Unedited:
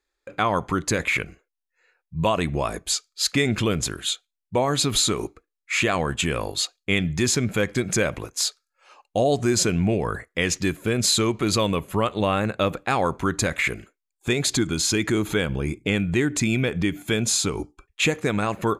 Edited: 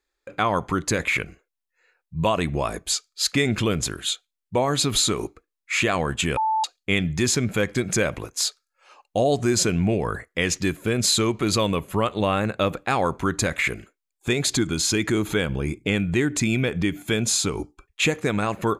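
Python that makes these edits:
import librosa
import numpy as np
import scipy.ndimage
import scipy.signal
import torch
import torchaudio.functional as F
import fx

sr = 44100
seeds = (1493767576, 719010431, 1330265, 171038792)

y = fx.edit(x, sr, fx.bleep(start_s=6.37, length_s=0.27, hz=878.0, db=-19.0), tone=tone)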